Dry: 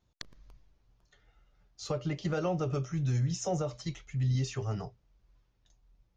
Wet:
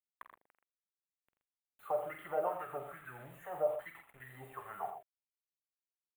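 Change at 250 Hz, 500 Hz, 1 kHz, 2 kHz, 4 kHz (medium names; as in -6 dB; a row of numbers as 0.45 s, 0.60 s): -21.0 dB, -1.5 dB, +1.5 dB, -2.0 dB, under -20 dB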